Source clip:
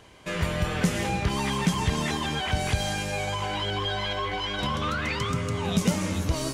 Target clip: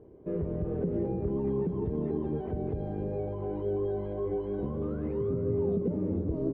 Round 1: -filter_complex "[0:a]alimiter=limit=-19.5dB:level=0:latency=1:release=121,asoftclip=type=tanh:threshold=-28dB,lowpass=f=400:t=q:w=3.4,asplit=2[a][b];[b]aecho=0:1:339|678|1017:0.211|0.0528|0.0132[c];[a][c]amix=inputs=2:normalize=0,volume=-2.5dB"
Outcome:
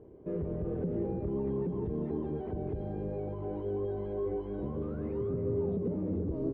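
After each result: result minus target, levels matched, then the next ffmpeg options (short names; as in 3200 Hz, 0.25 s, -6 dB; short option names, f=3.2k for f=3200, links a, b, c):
soft clip: distortion +12 dB; echo 0.128 s early
-filter_complex "[0:a]alimiter=limit=-19.5dB:level=0:latency=1:release=121,asoftclip=type=tanh:threshold=-19.5dB,lowpass=f=400:t=q:w=3.4,asplit=2[a][b];[b]aecho=0:1:339|678|1017:0.211|0.0528|0.0132[c];[a][c]amix=inputs=2:normalize=0,volume=-2.5dB"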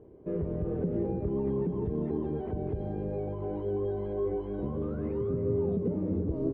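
echo 0.128 s early
-filter_complex "[0:a]alimiter=limit=-19.5dB:level=0:latency=1:release=121,asoftclip=type=tanh:threshold=-19.5dB,lowpass=f=400:t=q:w=3.4,asplit=2[a][b];[b]aecho=0:1:467|934|1401:0.211|0.0528|0.0132[c];[a][c]amix=inputs=2:normalize=0,volume=-2.5dB"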